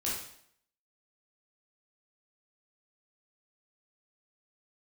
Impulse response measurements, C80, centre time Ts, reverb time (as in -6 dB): 6.0 dB, 53 ms, 0.65 s